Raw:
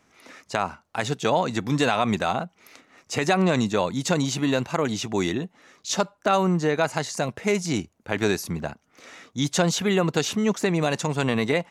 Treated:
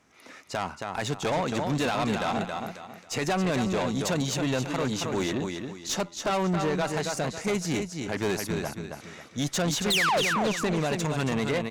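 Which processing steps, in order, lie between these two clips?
sound drawn into the spectrogram fall, 0:09.90–0:10.21, 450–4,500 Hz −15 dBFS
repeating echo 273 ms, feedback 30%, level −7.5 dB
tube saturation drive 22 dB, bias 0.4

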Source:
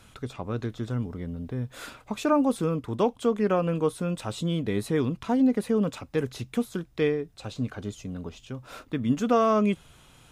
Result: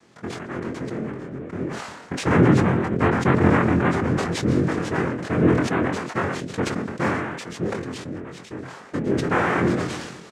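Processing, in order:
far-end echo of a speakerphone 120 ms, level −9 dB
cochlear-implant simulation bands 3
0:02.27–0:04.66: low-shelf EQ 300 Hz +9 dB
de-essing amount 70%
high-shelf EQ 4,200 Hz −11.5 dB
double-tracking delay 23 ms −4 dB
level that may fall only so fast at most 43 dB per second

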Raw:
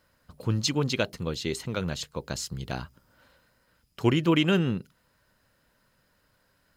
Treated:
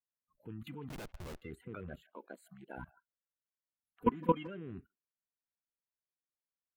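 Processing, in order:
spectral magnitudes quantised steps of 30 dB
Butterworth band-reject 5,500 Hz, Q 0.61
0:00.89–0:01.42: comparator with hysteresis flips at −37 dBFS
output level in coarse steps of 20 dB
0:02.02–0:02.78: Bessel high-pass filter 250 Hz, order 2
far-end echo of a speakerphone 160 ms, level −21 dB
noise reduction from a noise print of the clip's start 25 dB
0:04.01–0:04.47: comb filter 4.1 ms, depth 79%
level −4.5 dB

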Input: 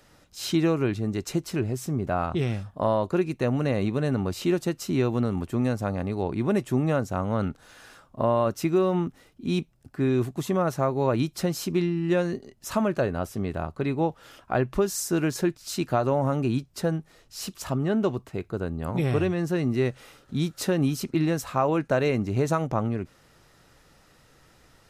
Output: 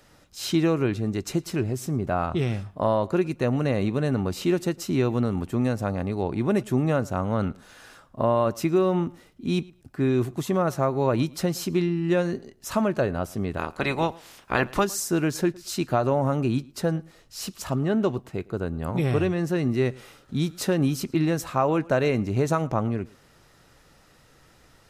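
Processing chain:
0:13.57–0:14.83: ceiling on every frequency bin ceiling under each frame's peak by 19 dB
tape delay 111 ms, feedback 20%, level −22 dB, low-pass 5,000 Hz
level +1 dB

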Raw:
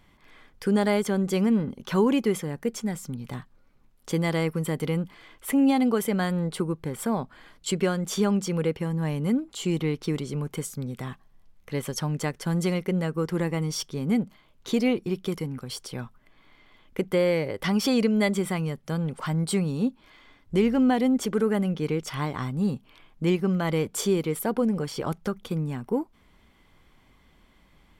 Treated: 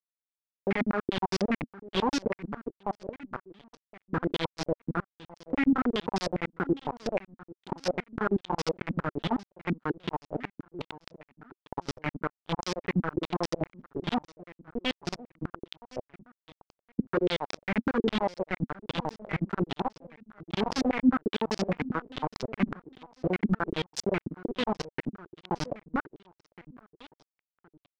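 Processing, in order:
adaptive Wiener filter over 25 samples
in parallel at +2.5 dB: downward compressor 6 to 1, threshold −33 dBFS, peak gain reduction 15 dB
on the sum: shaped tremolo saw up 11 Hz, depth 95%
bit reduction 4 bits
on a send: repeating echo 1,067 ms, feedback 29%, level −18.5 dB
on the sum: low-pass on a step sequencer 9.9 Hz 240–5,300 Hz
level −7 dB

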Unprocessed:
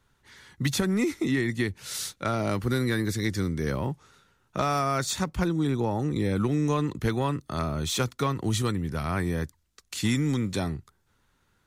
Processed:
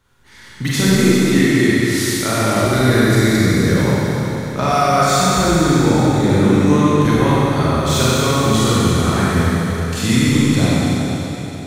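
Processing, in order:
four-comb reverb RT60 3.8 s, combs from 32 ms, DRR −9 dB
level +4 dB

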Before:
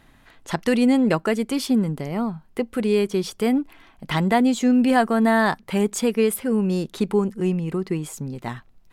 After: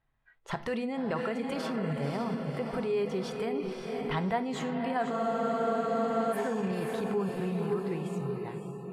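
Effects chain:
fade-out on the ending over 1.42 s
feedback delay with all-pass diffusion 543 ms, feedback 52%, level −6 dB
brickwall limiter −17 dBFS, peak gain reduction 11 dB
convolution reverb RT60 0.65 s, pre-delay 3 ms, DRR 10 dB
noise reduction from a noise print of the clip's start 20 dB
low-pass filter 1,300 Hz 6 dB per octave
parametric band 260 Hz −11 dB 1.4 octaves
frozen spectrum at 0:05.14, 1.19 s

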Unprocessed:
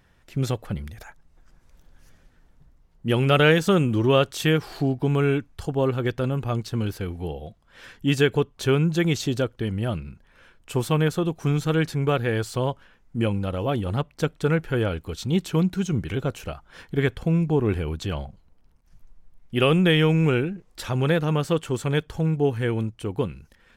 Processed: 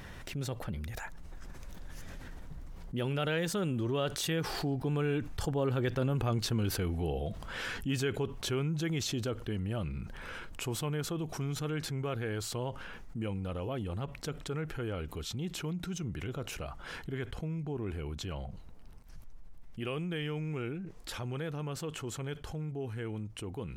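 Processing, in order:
source passing by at 0:06.29, 13 m/s, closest 8.9 metres
envelope flattener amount 70%
level −6.5 dB

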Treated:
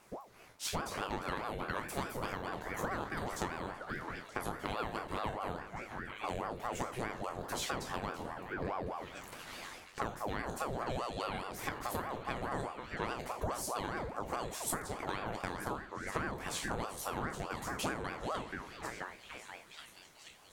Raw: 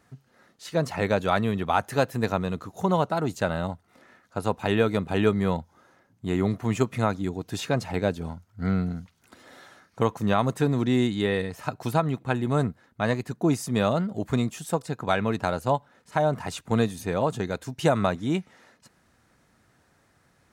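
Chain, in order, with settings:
peak hold with a decay on every bin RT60 0.39 s
echo through a band-pass that steps 480 ms, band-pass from 740 Hz, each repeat 0.7 octaves, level −9 dB
downward compressor 5 to 1, threshold −35 dBFS, peak gain reduction 18 dB
high-shelf EQ 6,300 Hz +9 dB
ring modulator whose carrier an LFO sweeps 610 Hz, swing 60%, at 4.8 Hz
level +1.5 dB

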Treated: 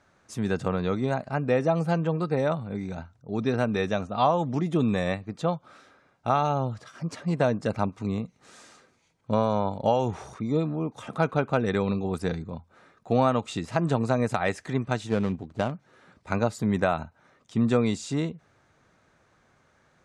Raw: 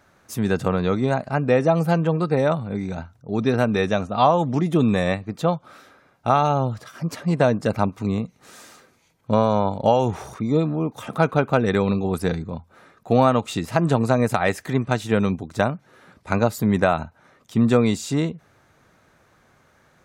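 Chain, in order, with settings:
0:15.09–0:15.72: running median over 25 samples
low-pass filter 9,100 Hz 24 dB per octave
level −5.5 dB

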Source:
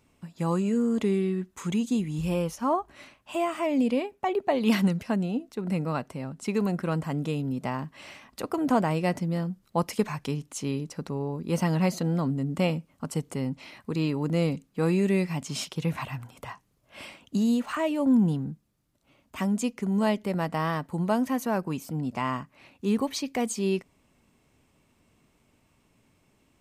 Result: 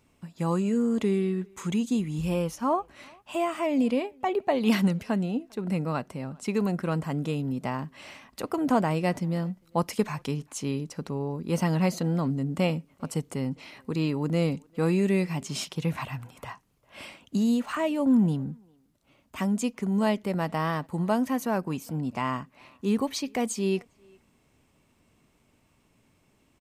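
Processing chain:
far-end echo of a speakerphone 400 ms, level −27 dB

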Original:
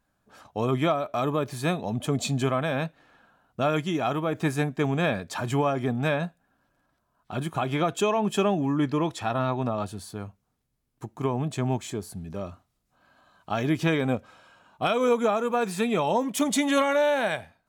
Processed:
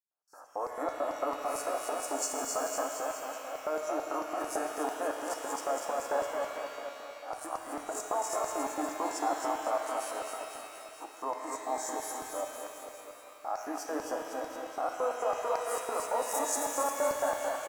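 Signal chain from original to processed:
peak hold with a rise ahead of every peak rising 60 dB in 0.32 s
elliptic high-pass filter 290 Hz
noise gate with hold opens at −50 dBFS
parametric band 3,800 Hz −14 dB 0.76 octaves
brickwall limiter −23 dBFS, peak gain reduction 10 dB
phaser with its sweep stopped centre 930 Hz, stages 4
bouncing-ball delay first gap 270 ms, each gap 0.9×, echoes 5
auto-filter high-pass square 4.5 Hz 390–5,100 Hz
Butterworth band-reject 3,300 Hz, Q 1.5
reverb with rising layers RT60 2.7 s, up +12 semitones, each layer −8 dB, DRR 4 dB

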